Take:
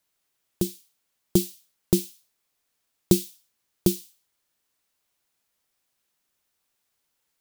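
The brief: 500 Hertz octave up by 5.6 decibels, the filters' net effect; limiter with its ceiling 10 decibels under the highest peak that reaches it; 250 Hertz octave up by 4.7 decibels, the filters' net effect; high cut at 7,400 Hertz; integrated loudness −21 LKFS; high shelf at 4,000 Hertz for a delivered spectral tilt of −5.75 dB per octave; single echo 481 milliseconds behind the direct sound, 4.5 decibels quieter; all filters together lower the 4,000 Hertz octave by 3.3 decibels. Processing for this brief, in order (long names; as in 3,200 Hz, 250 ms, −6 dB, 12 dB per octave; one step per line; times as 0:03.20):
low-pass filter 7,400 Hz
parametric band 250 Hz +5.5 dB
parametric band 500 Hz +5.5 dB
high-shelf EQ 4,000 Hz +3.5 dB
parametric band 4,000 Hz −6 dB
brickwall limiter −10 dBFS
single-tap delay 481 ms −4.5 dB
level +9 dB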